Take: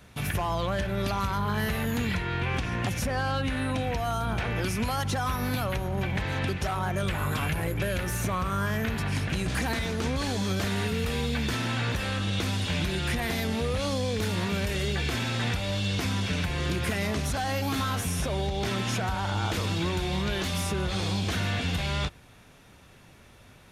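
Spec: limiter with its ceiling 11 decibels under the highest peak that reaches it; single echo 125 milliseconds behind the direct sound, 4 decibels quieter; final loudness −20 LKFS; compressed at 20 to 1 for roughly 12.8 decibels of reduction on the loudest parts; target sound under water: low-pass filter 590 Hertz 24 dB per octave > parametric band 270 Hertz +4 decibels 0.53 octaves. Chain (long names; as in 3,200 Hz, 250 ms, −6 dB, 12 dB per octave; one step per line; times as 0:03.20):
downward compressor 20 to 1, threshold −37 dBFS
brickwall limiter −38 dBFS
low-pass filter 590 Hz 24 dB per octave
parametric band 270 Hz +4 dB 0.53 octaves
single-tap delay 125 ms −4 dB
level +27 dB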